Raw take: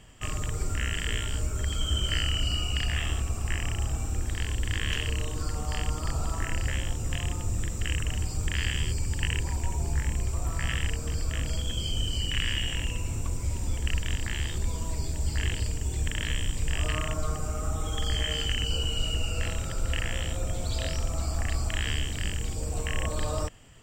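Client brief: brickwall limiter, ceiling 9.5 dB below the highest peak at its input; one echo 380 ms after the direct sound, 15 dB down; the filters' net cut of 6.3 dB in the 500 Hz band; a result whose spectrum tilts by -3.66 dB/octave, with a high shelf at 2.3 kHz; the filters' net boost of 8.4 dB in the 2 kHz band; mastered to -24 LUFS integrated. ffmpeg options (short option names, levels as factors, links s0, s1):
-af "equalizer=f=500:t=o:g=-9,equalizer=f=2000:t=o:g=8.5,highshelf=f=2300:g=4,alimiter=limit=0.168:level=0:latency=1,aecho=1:1:380:0.178,volume=1.78"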